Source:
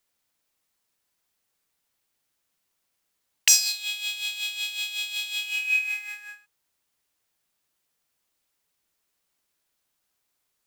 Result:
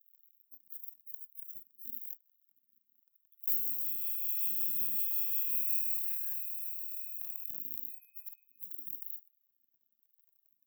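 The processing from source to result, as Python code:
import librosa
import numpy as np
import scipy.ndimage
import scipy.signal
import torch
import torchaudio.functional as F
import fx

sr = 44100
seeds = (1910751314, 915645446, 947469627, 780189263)

y = fx.halfwave_hold(x, sr)
y = fx.low_shelf(y, sr, hz=440.0, db=6.0)
y = fx.dmg_crackle(y, sr, seeds[0], per_s=76.0, level_db=-36.0)
y = fx.tremolo_random(y, sr, seeds[1], hz=1.4, depth_pct=95)
y = scipy.signal.sosfilt(scipy.signal.cheby2(4, 40, [470.0, 9800.0], 'bandstop', fs=sr, output='sos'), y)
y = np.clip(y, -10.0 ** (-20.0 / 20.0), 10.0 ** (-20.0 / 20.0))
y = fx.echo_wet_highpass(y, sr, ms=309, feedback_pct=56, hz=3300.0, wet_db=-19.5)
y = fx.rider(y, sr, range_db=3, speed_s=2.0)
y = fx.noise_reduce_blind(y, sr, reduce_db=30)
y = fx.filter_lfo_highpass(y, sr, shape='square', hz=1.0, low_hz=510.0, high_hz=2100.0, q=1.3)
y = fx.env_flatten(y, sr, amount_pct=70)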